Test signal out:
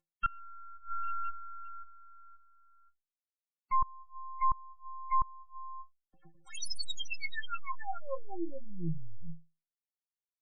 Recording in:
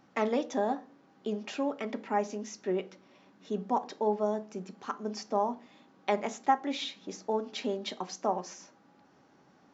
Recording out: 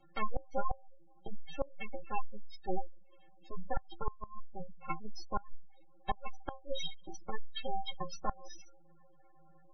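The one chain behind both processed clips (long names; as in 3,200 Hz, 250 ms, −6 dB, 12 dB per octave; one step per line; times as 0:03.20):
variable-slope delta modulation 32 kbit/s
half-wave rectification
stiff-string resonator 160 Hz, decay 0.29 s, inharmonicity 0.03
gate on every frequency bin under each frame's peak −25 dB strong
gate with flip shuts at −32 dBFS, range −24 dB
level +13 dB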